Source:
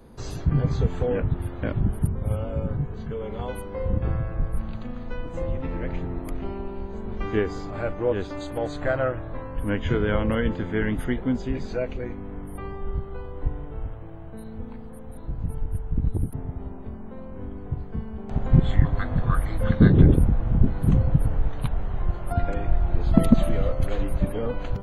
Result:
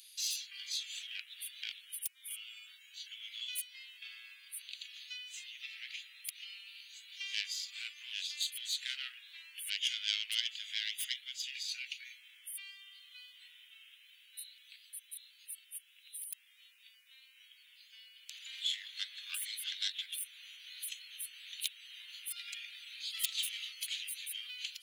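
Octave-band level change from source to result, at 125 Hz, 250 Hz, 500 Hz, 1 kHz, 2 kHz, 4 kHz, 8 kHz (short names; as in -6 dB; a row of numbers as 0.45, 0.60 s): under -40 dB, under -40 dB, under -40 dB, under -30 dB, -7.5 dB, +10.5 dB, n/a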